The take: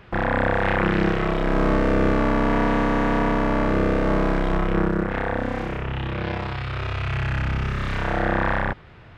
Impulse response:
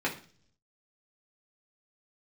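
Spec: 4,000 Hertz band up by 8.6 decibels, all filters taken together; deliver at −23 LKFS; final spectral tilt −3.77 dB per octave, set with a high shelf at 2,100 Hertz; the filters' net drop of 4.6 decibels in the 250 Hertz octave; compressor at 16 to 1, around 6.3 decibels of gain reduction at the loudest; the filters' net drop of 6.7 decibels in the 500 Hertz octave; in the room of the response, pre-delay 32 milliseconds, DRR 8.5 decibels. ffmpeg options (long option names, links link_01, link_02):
-filter_complex "[0:a]equalizer=frequency=250:width_type=o:gain=-4,equalizer=frequency=500:width_type=o:gain=-8,highshelf=frequency=2100:gain=5,equalizer=frequency=4000:width_type=o:gain=7,acompressor=threshold=-24dB:ratio=16,asplit=2[link_01][link_02];[1:a]atrim=start_sample=2205,adelay=32[link_03];[link_02][link_03]afir=irnorm=-1:irlink=0,volume=-17.5dB[link_04];[link_01][link_04]amix=inputs=2:normalize=0,volume=5.5dB"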